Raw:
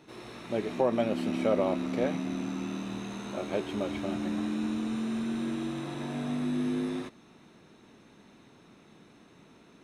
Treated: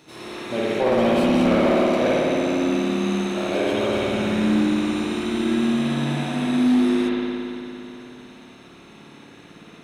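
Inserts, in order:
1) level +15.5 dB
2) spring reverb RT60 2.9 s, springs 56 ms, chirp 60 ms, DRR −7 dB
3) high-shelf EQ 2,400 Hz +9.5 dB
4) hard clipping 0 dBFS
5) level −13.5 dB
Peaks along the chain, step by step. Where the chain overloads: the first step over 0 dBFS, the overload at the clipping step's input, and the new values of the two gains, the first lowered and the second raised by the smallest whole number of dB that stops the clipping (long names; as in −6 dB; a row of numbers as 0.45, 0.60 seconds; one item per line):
+0.5, +9.0, +9.5, 0.0, −13.5 dBFS
step 1, 9.5 dB
step 1 +5.5 dB, step 5 −3.5 dB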